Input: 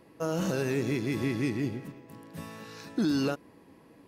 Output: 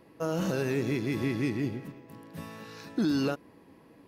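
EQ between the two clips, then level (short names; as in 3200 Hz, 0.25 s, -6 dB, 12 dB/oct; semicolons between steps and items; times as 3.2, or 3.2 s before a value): bell 7900 Hz -4 dB 0.89 oct; 0.0 dB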